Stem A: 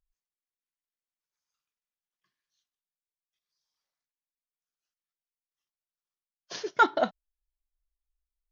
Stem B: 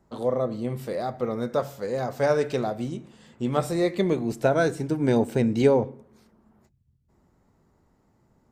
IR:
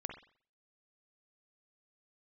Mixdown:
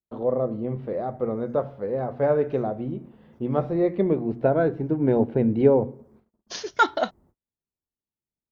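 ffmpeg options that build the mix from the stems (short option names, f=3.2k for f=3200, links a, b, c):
-filter_complex "[0:a]highshelf=f=4.6k:g=7.5,volume=1.5dB[a];[1:a]lowpass=f=3.4k:w=0.5412,lowpass=f=3.4k:w=1.3066,tiltshelf=f=1.4k:g=9,bandreject=f=60:t=h:w=6,bandreject=f=120:t=h:w=6,bandreject=f=180:t=h:w=6,bandreject=f=240:t=h:w=6,volume=-5dB[b];[a][b]amix=inputs=2:normalize=0,agate=range=-36dB:threshold=-53dB:ratio=16:detection=peak,equalizer=f=150:t=o:w=1.7:g=-2.5"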